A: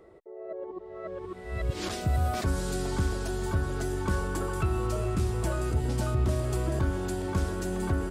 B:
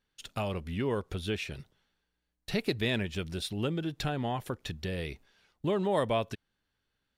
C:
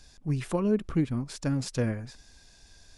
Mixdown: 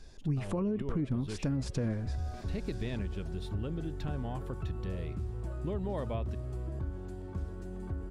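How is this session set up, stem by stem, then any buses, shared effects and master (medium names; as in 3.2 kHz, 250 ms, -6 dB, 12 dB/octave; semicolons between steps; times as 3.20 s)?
-16.5 dB, 0.00 s, no bus, no send, none
-12.5 dB, 0.00 s, bus A, no send, none
-0.5 dB, 0.00 s, bus A, no send, bass shelf 120 Hz -8 dB
bus A: 0.0 dB, level rider gain up to 3.5 dB; peak limiter -23 dBFS, peak gain reduction 9.5 dB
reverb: none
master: tilt EQ -2.5 dB/octave; compression 2.5:1, threshold -31 dBFS, peak gain reduction 7.5 dB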